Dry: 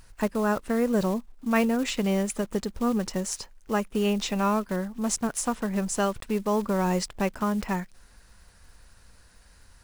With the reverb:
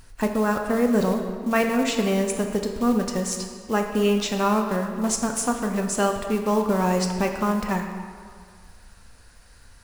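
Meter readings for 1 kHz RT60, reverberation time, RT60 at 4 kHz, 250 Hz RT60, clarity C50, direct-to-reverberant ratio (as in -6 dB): 2.0 s, 1.9 s, 1.3 s, 1.8 s, 5.5 dB, 3.5 dB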